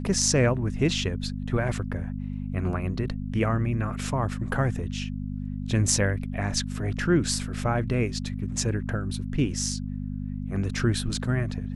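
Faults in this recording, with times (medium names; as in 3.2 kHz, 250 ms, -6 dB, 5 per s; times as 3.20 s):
hum 50 Hz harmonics 5 -32 dBFS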